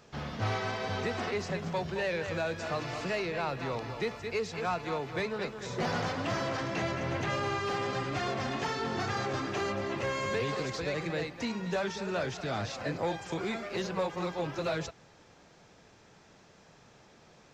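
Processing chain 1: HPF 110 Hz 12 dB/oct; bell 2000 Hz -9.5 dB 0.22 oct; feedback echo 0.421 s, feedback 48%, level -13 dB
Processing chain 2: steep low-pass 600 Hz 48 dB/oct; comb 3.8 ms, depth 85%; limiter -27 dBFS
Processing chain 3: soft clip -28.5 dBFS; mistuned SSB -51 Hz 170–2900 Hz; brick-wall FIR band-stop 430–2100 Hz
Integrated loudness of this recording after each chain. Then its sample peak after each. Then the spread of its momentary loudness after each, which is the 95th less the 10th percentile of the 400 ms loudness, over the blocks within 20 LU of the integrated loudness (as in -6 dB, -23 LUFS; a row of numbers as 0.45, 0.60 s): -34.0, -36.5, -40.5 LUFS; -21.0, -27.0, -25.5 dBFS; 3, 3, 4 LU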